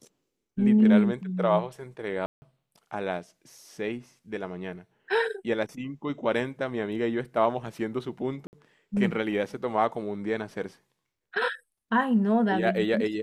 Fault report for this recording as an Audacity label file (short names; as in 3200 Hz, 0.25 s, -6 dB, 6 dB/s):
2.260000	2.420000	gap 0.16 s
8.470000	8.530000	gap 59 ms